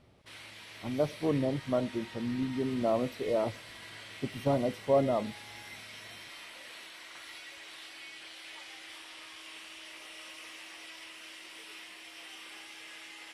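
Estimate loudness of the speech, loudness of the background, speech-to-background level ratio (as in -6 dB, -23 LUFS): -32.0 LUFS, -45.5 LUFS, 13.5 dB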